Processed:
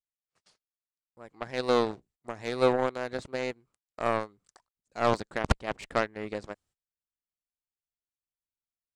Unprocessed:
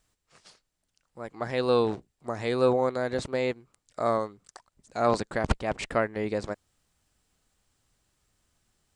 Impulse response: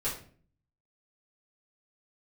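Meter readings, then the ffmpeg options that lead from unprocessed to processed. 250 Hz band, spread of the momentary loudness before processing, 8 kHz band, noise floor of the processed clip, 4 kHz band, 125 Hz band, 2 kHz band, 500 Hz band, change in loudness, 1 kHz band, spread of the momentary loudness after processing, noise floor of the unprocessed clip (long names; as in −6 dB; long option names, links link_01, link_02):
−3.0 dB, 15 LU, −2.5 dB, below −85 dBFS, 0.0 dB, −3.0 dB, 0.0 dB, −3.0 dB, −2.0 dB, −1.0 dB, 17 LU, −80 dBFS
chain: -af "agate=range=-24dB:threshold=-56dB:ratio=16:detection=peak,aeval=exprs='0.355*(cos(1*acos(clip(val(0)/0.355,-1,1)))-cos(1*PI/2))+0.0355*(cos(7*acos(clip(val(0)/0.355,-1,1)))-cos(7*PI/2))':channel_layout=same"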